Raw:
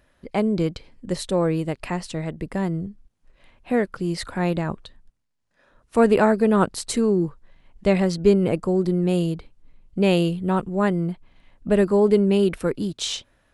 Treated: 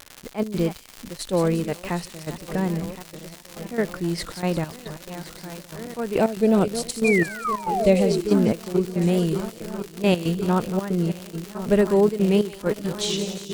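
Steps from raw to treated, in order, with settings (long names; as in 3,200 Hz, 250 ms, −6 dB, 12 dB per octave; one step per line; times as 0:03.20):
feedback delay that plays each chunk backwards 533 ms, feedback 81%, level −13 dB
0:06.18–0:08.27: flat-topped bell 1,300 Hz −9.5 dB 1.3 octaves
0:07.04–0:08.52: sound drawn into the spectrogram fall 210–2,500 Hz −24 dBFS
gate pattern "xxxx.xx..x.x" 139 BPM −12 dB
surface crackle 170 per second −25 dBFS
pitch vibrato 3.4 Hz 56 cents
delay with a high-pass on its return 177 ms, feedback 57%, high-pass 4,300 Hz, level −6.5 dB
level that may rise only so fast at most 370 dB per second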